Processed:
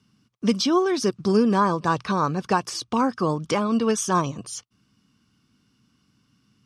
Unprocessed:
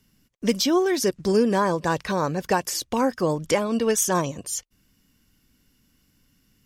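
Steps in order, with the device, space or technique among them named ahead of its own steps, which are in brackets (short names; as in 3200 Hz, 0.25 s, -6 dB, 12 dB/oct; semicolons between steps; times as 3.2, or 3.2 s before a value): car door speaker (speaker cabinet 99–8600 Hz, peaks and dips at 120 Hz +7 dB, 210 Hz +4 dB, 550 Hz -6 dB, 1200 Hz +9 dB, 1900 Hz -7 dB, 7200 Hz -9 dB)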